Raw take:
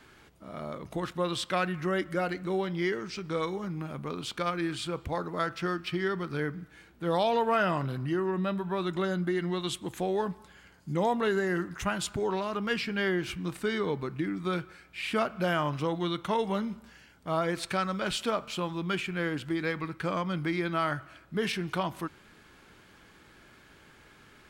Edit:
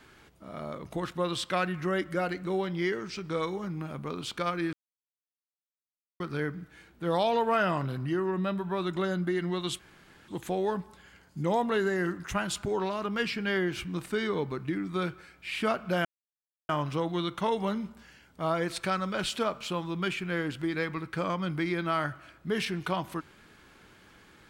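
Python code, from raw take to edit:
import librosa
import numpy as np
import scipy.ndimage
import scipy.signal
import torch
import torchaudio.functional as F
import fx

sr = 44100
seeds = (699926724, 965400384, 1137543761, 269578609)

y = fx.edit(x, sr, fx.silence(start_s=4.73, length_s=1.47),
    fx.insert_room_tone(at_s=9.79, length_s=0.49),
    fx.insert_silence(at_s=15.56, length_s=0.64), tone=tone)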